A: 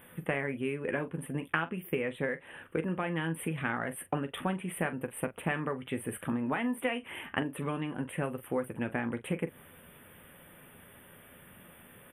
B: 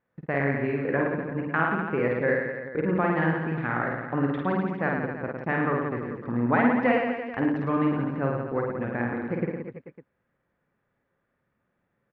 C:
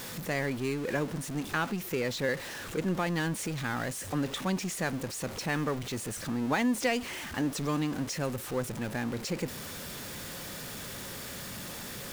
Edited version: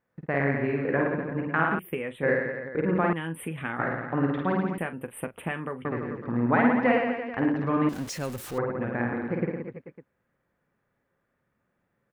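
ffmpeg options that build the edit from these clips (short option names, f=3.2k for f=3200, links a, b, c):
-filter_complex "[0:a]asplit=3[a][b][c];[1:a]asplit=5[d][e][f][g][h];[d]atrim=end=1.792[i];[a]atrim=start=1.788:end=2.232[j];[e]atrim=start=2.228:end=3.132[k];[b]atrim=start=3.128:end=3.792[l];[f]atrim=start=3.788:end=4.782[m];[c]atrim=start=4.778:end=5.852[n];[g]atrim=start=5.848:end=7.892[o];[2:a]atrim=start=7.888:end=8.582[p];[h]atrim=start=8.578[q];[i][j]acrossfade=d=0.004:c1=hsin:c2=hsin[r];[r][k]acrossfade=d=0.004:c1=hsin:c2=hsin[s];[s][l]acrossfade=d=0.004:c1=hsin:c2=hsin[t];[t][m]acrossfade=d=0.004:c1=hsin:c2=hsin[u];[u][n]acrossfade=d=0.004:c1=hsin:c2=hsin[v];[v][o]acrossfade=d=0.004:c1=hsin:c2=hsin[w];[w][p]acrossfade=d=0.004:c1=hsin:c2=hsin[x];[x][q]acrossfade=d=0.004:c1=hsin:c2=hsin"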